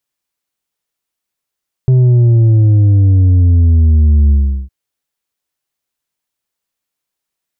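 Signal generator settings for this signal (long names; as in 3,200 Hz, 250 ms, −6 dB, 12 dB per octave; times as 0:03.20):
bass drop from 130 Hz, over 2.81 s, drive 5 dB, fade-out 0.38 s, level −6 dB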